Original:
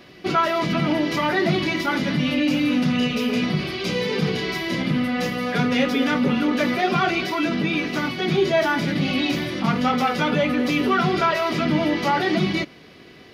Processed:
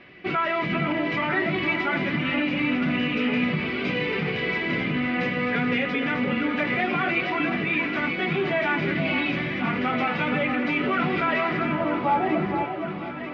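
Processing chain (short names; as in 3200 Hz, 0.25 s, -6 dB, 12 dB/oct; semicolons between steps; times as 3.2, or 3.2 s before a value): limiter -14 dBFS, peak gain reduction 4.5 dB; low-pass sweep 2300 Hz -> 810 Hz, 11.42–12.21; echo with dull and thin repeats by turns 0.471 s, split 1200 Hz, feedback 76%, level -6.5 dB; gain -4.5 dB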